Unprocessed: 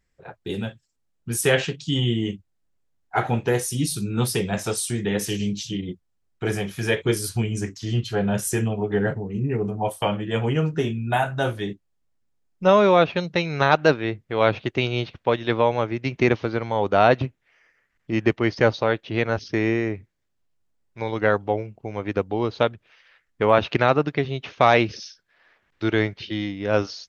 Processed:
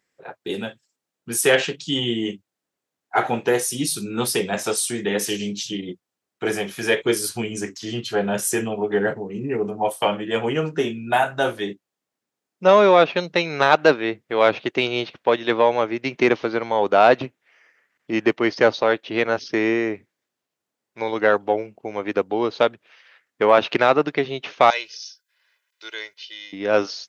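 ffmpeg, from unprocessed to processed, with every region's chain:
ffmpeg -i in.wav -filter_complex "[0:a]asettb=1/sr,asplit=3[link_01][link_02][link_03];[link_01]atrim=end=24.704[link_04];[link_02]atrim=start=24.7:end=26.53,asetpts=PTS-STARTPTS,afade=type=in:duration=0.004:curve=qsin,afade=type=out:start_time=1.826:duration=0.004:curve=qsin,aderivative,aecho=1:1:2:0.66,atrim=end_sample=80703[link_05];[link_03]atrim=start=26.526[link_06];[link_04][link_05]acrossfade=duration=0.004:curve1=hsin:curve2=qsin[link_07];[link_07][link_06]acrossfade=duration=0.004:curve1=qsin:curve2=hsin,acontrast=22,highpass=270,volume=-1dB" out.wav

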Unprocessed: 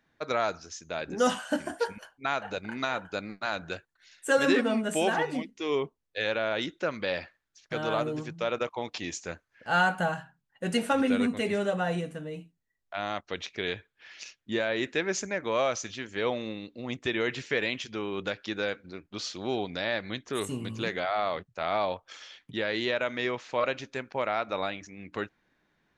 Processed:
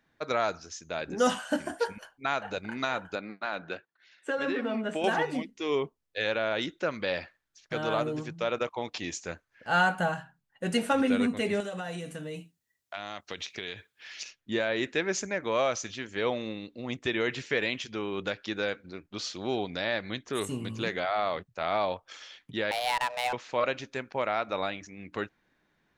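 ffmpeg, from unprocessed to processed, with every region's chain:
ffmpeg -i in.wav -filter_complex "[0:a]asettb=1/sr,asplit=3[link_01][link_02][link_03];[link_01]atrim=end=3.154[link_04];[link_02]atrim=start=3.15:end=5.04,asetpts=PTS-STARTPTS,afade=type=in:duration=0.004:curve=qsin,afade=type=out:start_time=1.886:duration=0.004:curve=qsin,highpass=190,lowpass=3400,acompressor=threshold=-26dB:ratio=6:attack=3.2:release=140:knee=1:detection=peak[link_05];[link_03]atrim=start=5.036[link_06];[link_04][link_05]acrossfade=duration=0.004:curve1=hsin:curve2=qsin[link_07];[link_07][link_06]acrossfade=duration=0.004:curve1=qsin:curve2=hsin,asettb=1/sr,asplit=3[link_08][link_09][link_10];[link_08]atrim=end=11.604[link_11];[link_09]atrim=start=11.6:end=14.23,asetpts=PTS-STARTPTS,afade=type=in:duration=0.004:curve=qsin,afade=type=out:start_time=2.626:duration=0.004:curve=qsin,highshelf=frequency=2700:gain=10,acompressor=threshold=-33dB:ratio=5:attack=3.2:release=140:knee=1:detection=peak,highpass=61[link_12];[link_10]atrim=start=14.226[link_13];[link_11][link_12]acrossfade=duration=0.004:curve1=hsin:curve2=qsin[link_14];[link_14][link_13]acrossfade=duration=0.004:curve1=qsin:curve2=hsin,asettb=1/sr,asplit=3[link_15][link_16][link_17];[link_15]atrim=end=22.714[link_18];[link_16]atrim=start=22.71:end=23.33,asetpts=PTS-STARTPTS,afade=type=in:duration=0.004:curve=qsin,afade=type=out:start_time=0.616:duration=0.004:curve=qsin,afreqshift=370,adynamicsmooth=sensitivity=5:basefreq=670[link_19];[link_17]atrim=start=23.326[link_20];[link_18][link_19]acrossfade=duration=0.004:curve1=hsin:curve2=qsin[link_21];[link_21][link_20]acrossfade=duration=0.004:curve1=qsin:curve2=hsin" out.wav

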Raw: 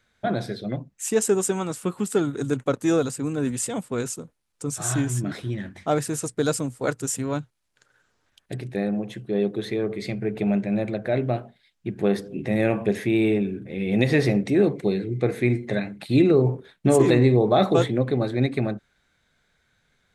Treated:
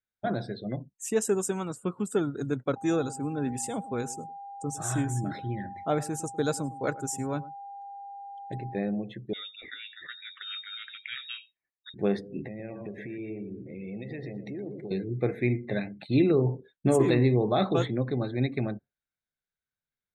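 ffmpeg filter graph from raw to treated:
ffmpeg -i in.wav -filter_complex "[0:a]asettb=1/sr,asplit=3[link_01][link_02][link_03];[link_01]atrim=end=2.764[link_04];[link_02]atrim=start=2.76:end=8.79,asetpts=PTS-STARTPTS,afade=type=in:duration=0.004:curve=qsin,afade=type=out:start_time=6.026:duration=0.004:curve=qsin,aeval=exprs='val(0)+0.0158*sin(2*PI*800*n/s)':channel_layout=same,aecho=1:1:105:0.126,atrim=end_sample=265923[link_05];[link_03]atrim=start=8.786[link_06];[link_04][link_05]acrossfade=duration=0.004:curve1=hsin:curve2=qsin[link_07];[link_07][link_06]acrossfade=duration=0.004:curve1=qsin:curve2=hsin,asettb=1/sr,asplit=3[link_08][link_09][link_10];[link_08]atrim=end=9.334[link_11];[link_09]atrim=start=9.33:end=11.94,asetpts=PTS-STARTPTS,afade=type=in:duration=0.004:curve=qsin,afade=type=out:start_time=2.606:duration=0.004:curve=qsin,lowshelf=frequency=780:width_type=q:width=3:gain=-12,aecho=1:1:89:0.141,atrim=end_sample=115101,lowpass=frequency=3300:width_type=q:width=0.5098,lowpass=frequency=3300:width_type=q:width=0.6013,lowpass=frequency=3300:width_type=q:width=0.9,lowpass=frequency=3300:width_type=q:width=2.563,afreqshift=-3900[link_12];[link_10]atrim=start=11.936[link_13];[link_11][link_12]acrossfade=duration=0.004:curve1=hsin:curve2=qsin[link_14];[link_14][link_13]acrossfade=duration=0.004:curve1=qsin:curve2=hsin,asettb=1/sr,asplit=3[link_15][link_16][link_17];[link_15]atrim=end=12.474[link_18];[link_16]atrim=start=12.47:end=14.91,asetpts=PTS-STARTPTS,afade=type=in:duration=0.004:curve=qsin,afade=type=out:start_time=2.436:duration=0.004:curve=qsin,highshelf=frequency=9300:gain=-8.5,acompressor=threshold=-33dB:ratio=4:attack=3.2:release=140:knee=1:detection=peak,aecho=1:1:119|238|357|476|595:0.355|0.149|0.0626|0.0263|0.011,atrim=end_sample=107604[link_19];[link_17]atrim=start=14.906[link_20];[link_18][link_19]acrossfade=duration=0.004:curve1=hsin:curve2=qsin[link_21];[link_21][link_20]acrossfade=duration=0.004:curve1=qsin:curve2=hsin,equalizer=frequency=9600:width=0.77:gain=-2.5,afftdn=noise_reduction=25:noise_floor=-43,adynamicequalizer=threshold=0.0282:dfrequency=550:dqfactor=1.1:tfrequency=550:tqfactor=1.1:attack=5:release=100:ratio=0.375:range=2:mode=cutabove:tftype=bell,volume=-4.5dB" out.wav

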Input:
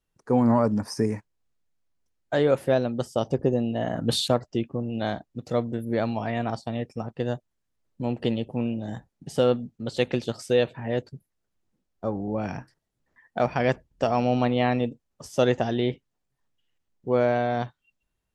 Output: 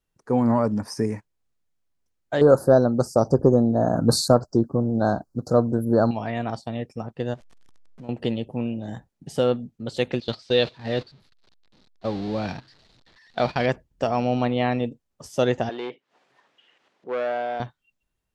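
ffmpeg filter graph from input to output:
ffmpeg -i in.wav -filter_complex "[0:a]asettb=1/sr,asplit=3[link_01][link_02][link_03];[link_01]atrim=end=2.414[link_04];[link_02]atrim=start=2.41:end=6.11,asetpts=PTS-STARTPTS,afade=type=in:duration=0.004:curve=qsin,afade=type=out:start_time=3.696:duration=0.004:curve=qsin,acontrast=79,asuperstop=centerf=2600:order=12:qfactor=0.95[link_05];[link_03]atrim=start=6.106[link_06];[link_04][link_05]acrossfade=duration=0.004:curve1=hsin:curve2=qsin[link_07];[link_07][link_06]acrossfade=duration=0.004:curve1=qsin:curve2=hsin,asettb=1/sr,asplit=3[link_08][link_09][link_10];[link_08]atrim=end=7.344[link_11];[link_09]atrim=start=7.34:end=8.09,asetpts=PTS-STARTPTS,afade=type=in:duration=0.004:curve=qsin,afade=type=out:start_time=0.746:duration=0.004:curve=qsin,aeval=exprs='val(0)+0.5*0.0075*sgn(val(0))':channel_layout=same,lowpass=6700,acompressor=threshold=-41dB:ratio=3:attack=3.2:release=140:knee=1:detection=peak[link_12];[link_10]atrim=start=8.086[link_13];[link_11][link_12]acrossfade=duration=0.004:curve1=hsin:curve2=qsin[link_14];[link_14][link_13]acrossfade=duration=0.004:curve1=qsin:curve2=hsin,asettb=1/sr,asplit=3[link_15][link_16][link_17];[link_15]atrim=end=10.204[link_18];[link_16]atrim=start=10.2:end=13.66,asetpts=PTS-STARTPTS,afade=type=in:duration=0.004:curve=qsin,afade=type=out:start_time=3.456:duration=0.004:curve=qsin,aeval=exprs='val(0)+0.5*0.015*sgn(val(0))':channel_layout=same,agate=range=-16dB:threshold=-32dB:ratio=16:release=100:detection=peak,lowpass=frequency=4200:width_type=q:width=4.3[link_19];[link_17]atrim=start=13.656[link_20];[link_18][link_19]acrossfade=duration=0.004:curve1=hsin:curve2=qsin[link_21];[link_21][link_20]acrossfade=duration=0.004:curve1=qsin:curve2=hsin,asettb=1/sr,asplit=3[link_22][link_23][link_24];[link_22]atrim=end=15.694[link_25];[link_23]atrim=start=15.69:end=17.6,asetpts=PTS-STARTPTS,afade=type=in:duration=0.004:curve=qsin,afade=type=out:start_time=1.906:duration=0.004:curve=qsin,acompressor=mode=upward:threshold=-30dB:ratio=2.5:attack=3.2:release=140:knee=2.83:detection=peak,volume=20dB,asoftclip=hard,volume=-20dB,highpass=450,lowpass=3300[link_26];[link_24]atrim=start=17.596[link_27];[link_25][link_26]acrossfade=duration=0.004:curve1=hsin:curve2=qsin[link_28];[link_28][link_27]acrossfade=duration=0.004:curve1=qsin:curve2=hsin" out.wav

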